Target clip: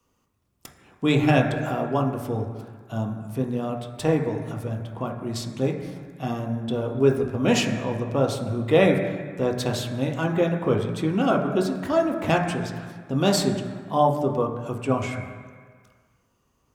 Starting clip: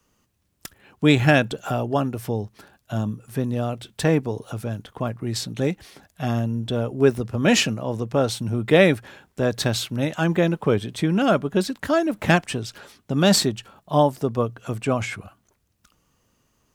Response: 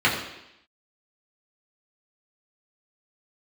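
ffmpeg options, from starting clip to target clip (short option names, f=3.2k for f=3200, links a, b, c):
-filter_complex "[0:a]asplit=2[a][b];[1:a]atrim=start_sample=2205,asetrate=22932,aresample=44100[c];[b][c]afir=irnorm=-1:irlink=0,volume=-22dB[d];[a][d]amix=inputs=2:normalize=0,volume=-5.5dB"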